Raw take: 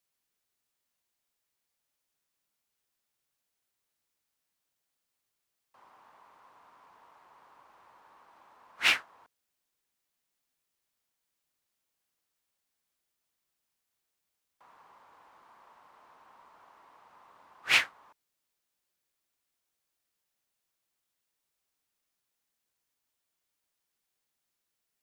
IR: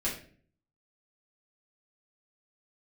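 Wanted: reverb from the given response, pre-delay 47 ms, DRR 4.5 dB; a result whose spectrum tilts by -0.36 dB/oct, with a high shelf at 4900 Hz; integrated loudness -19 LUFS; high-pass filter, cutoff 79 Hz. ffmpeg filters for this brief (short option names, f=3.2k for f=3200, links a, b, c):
-filter_complex "[0:a]highpass=79,highshelf=f=4.9k:g=8,asplit=2[a][b];[1:a]atrim=start_sample=2205,adelay=47[c];[b][c]afir=irnorm=-1:irlink=0,volume=-10dB[d];[a][d]amix=inputs=2:normalize=0,volume=6dB"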